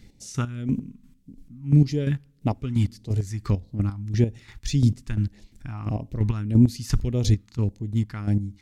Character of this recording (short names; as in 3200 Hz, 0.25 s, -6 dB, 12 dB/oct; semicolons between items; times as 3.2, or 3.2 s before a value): phasing stages 2, 1.7 Hz, lowest notch 520–1300 Hz; chopped level 2.9 Hz, depth 65%, duty 30%